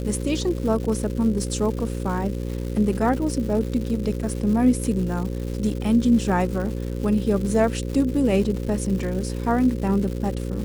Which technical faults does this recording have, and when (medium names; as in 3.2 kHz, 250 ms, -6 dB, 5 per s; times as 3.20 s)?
buzz 60 Hz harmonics 9 -28 dBFS
crackle 310 per s -31 dBFS